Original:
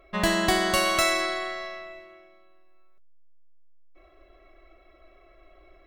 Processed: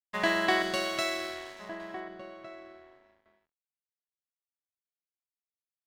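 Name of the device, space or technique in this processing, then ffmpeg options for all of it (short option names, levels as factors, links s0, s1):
pocket radio on a weak battery: -filter_complex "[0:a]asettb=1/sr,asplit=3[s0][s1][s2];[s0]atrim=end=0.624[s3];[s1]atrim=start=0.62:end=1.8,asetpts=PTS-STARTPTS,afade=t=in:d=0.004:c=qsin,afade=t=out:st=1.176:d=0.004:c=qsin,equalizer=f=125:t=o:w=1:g=9,equalizer=f=1000:t=o:w=1:g=-8,equalizer=f=2000:t=o:w=1:g=-6,equalizer=f=16000:t=o:w=1:g=11[s4];[s2]atrim=start=1.796[s5];[s3][s4]acrossfade=d=0.004:c1=hsin:c2=qsin[s6];[s6][s5]acrossfade=d=0.004:c1=qsin:c2=hsin,highpass=290,lowpass=3700,aeval=exprs='sgn(val(0))*max(abs(val(0))-0.01,0)':c=same,equalizer=f=1800:t=o:w=0.31:g=4,asplit=2[s7][s8];[s8]adelay=1458,volume=0.282,highshelf=f=4000:g=-32.8[s9];[s7][s9]amix=inputs=2:normalize=0,volume=0.841"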